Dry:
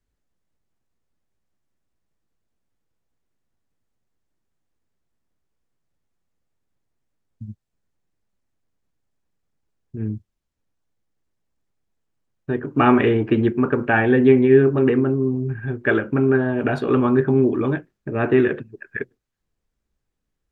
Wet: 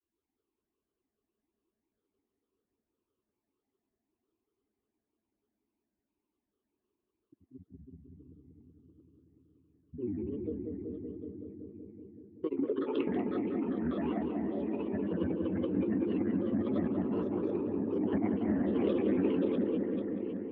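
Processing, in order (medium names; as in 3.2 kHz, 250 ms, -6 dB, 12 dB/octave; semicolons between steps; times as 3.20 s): backward echo that repeats 195 ms, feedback 76%, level -1 dB; vowel filter u; peak limiter -18.5 dBFS, peak gain reduction 8.5 dB; bass shelf 440 Hz +5.5 dB; granulator 100 ms, grains 20 per s, pitch spread up and down by 7 st; peaking EQ 160 Hz -10.5 dB 0.92 oct; compressor with a negative ratio -33 dBFS, ratio -1; on a send: filtered feedback delay 189 ms, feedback 79%, low-pass 1.3 kHz, level -4 dB; on the sum: trim -1.5 dB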